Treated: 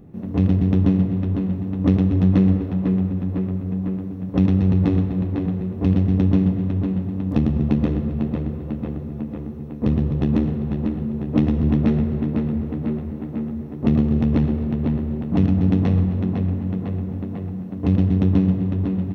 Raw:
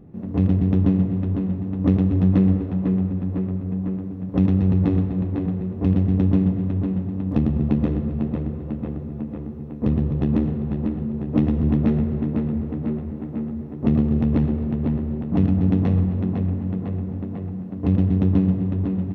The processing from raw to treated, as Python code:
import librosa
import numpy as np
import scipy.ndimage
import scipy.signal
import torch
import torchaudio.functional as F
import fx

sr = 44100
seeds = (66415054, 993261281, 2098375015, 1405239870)

y = fx.high_shelf(x, sr, hz=3000.0, db=8.0)
y = y * 10.0 ** (1.0 / 20.0)